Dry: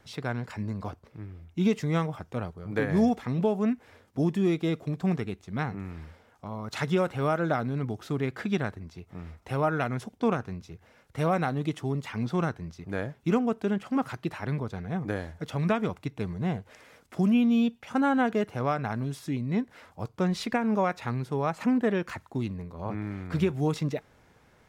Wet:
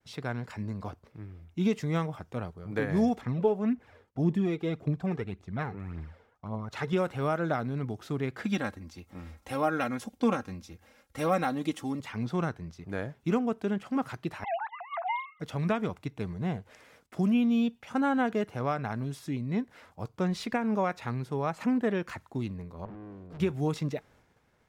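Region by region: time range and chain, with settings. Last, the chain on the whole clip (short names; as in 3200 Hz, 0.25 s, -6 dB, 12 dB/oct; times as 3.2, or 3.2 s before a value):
3.21–6.93 high shelf 4000 Hz -11 dB + phaser 1.8 Hz, delay 2.6 ms, feedback 47%
8.44–12 high shelf 4600 Hz +7.5 dB + comb 3.7 ms, depth 68%
14.44–15.4 sine-wave speech + frequency shift +460 Hz
22.85–23.4 EQ curve 130 Hz 0 dB, 400 Hz +5 dB, 640 Hz -5 dB, 1700 Hz -22 dB, 3100 Hz -12 dB + tube stage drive 39 dB, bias 0.45
whole clip: expander -54 dBFS; de-esser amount 80%; gain -2.5 dB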